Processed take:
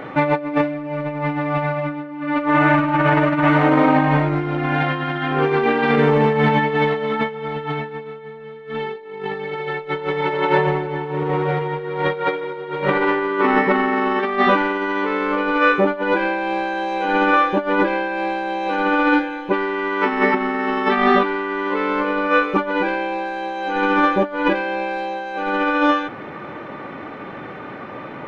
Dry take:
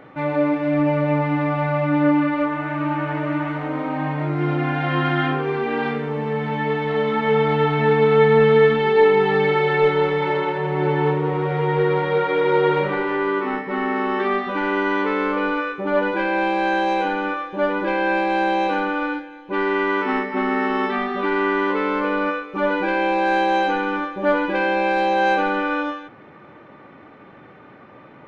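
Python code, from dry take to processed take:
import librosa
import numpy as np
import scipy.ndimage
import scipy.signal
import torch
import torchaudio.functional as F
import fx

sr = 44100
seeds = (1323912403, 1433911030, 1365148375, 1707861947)

y = fx.over_compress(x, sr, threshold_db=-25.0, ratio=-0.5)
y = fx.peak_eq(y, sr, hz=81.0, db=-3.5, octaves=2.7)
y = y * 10.0 ** (7.0 / 20.0)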